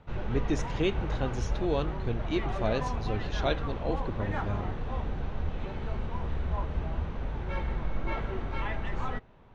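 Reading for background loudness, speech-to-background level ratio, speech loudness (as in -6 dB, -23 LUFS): -35.0 LUFS, 1.0 dB, -34.0 LUFS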